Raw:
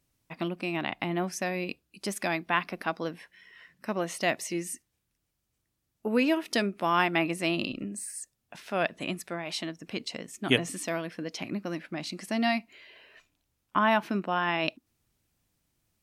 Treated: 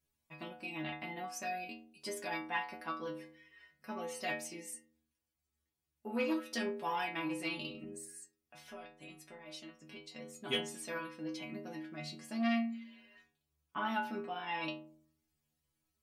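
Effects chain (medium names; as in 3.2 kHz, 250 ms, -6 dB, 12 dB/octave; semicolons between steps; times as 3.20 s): 7.99–10.16 s: compression 12:1, threshold -37 dBFS, peak gain reduction 15.5 dB; inharmonic resonator 74 Hz, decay 0.8 s, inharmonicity 0.008; transformer saturation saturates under 790 Hz; trim +4 dB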